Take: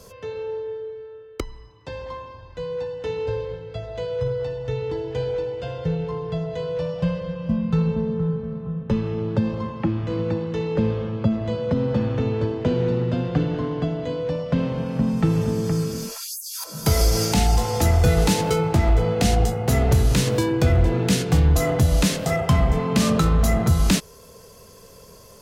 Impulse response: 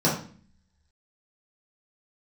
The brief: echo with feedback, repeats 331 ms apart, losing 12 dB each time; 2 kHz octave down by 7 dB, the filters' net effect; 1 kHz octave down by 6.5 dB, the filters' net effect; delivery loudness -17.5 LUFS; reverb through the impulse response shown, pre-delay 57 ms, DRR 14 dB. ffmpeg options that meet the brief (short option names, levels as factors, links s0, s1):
-filter_complex "[0:a]equalizer=f=1000:t=o:g=-8,equalizer=f=2000:t=o:g=-6.5,aecho=1:1:331|662|993:0.251|0.0628|0.0157,asplit=2[s0][s1];[1:a]atrim=start_sample=2205,adelay=57[s2];[s1][s2]afir=irnorm=-1:irlink=0,volume=0.0355[s3];[s0][s3]amix=inputs=2:normalize=0,volume=1.58"